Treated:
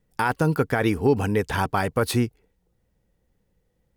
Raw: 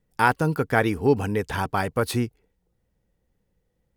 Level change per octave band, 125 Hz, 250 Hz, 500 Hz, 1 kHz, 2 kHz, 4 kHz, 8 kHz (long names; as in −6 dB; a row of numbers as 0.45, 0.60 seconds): +1.5, +1.5, +0.5, −1.5, −2.0, +1.5, +2.0 decibels